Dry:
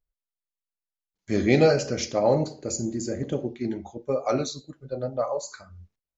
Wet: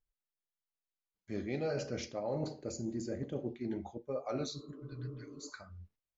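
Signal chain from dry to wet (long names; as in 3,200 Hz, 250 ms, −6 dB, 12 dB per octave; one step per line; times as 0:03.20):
healed spectral selection 0:04.59–0:05.46, 230–1,400 Hz before
reversed playback
downward compressor 5 to 1, threshold −30 dBFS, peak gain reduction 15 dB
reversed playback
high-frequency loss of the air 100 metres
level −4 dB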